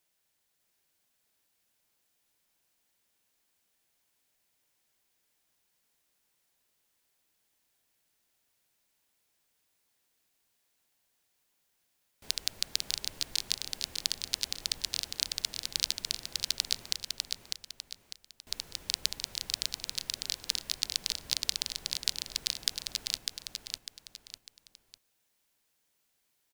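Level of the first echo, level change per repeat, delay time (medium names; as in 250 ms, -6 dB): -4.0 dB, -8.5 dB, 600 ms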